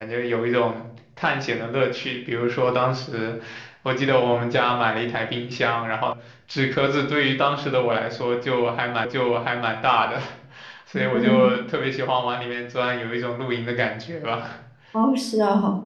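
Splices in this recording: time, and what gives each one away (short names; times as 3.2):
6.13 sound cut off
9.05 repeat of the last 0.68 s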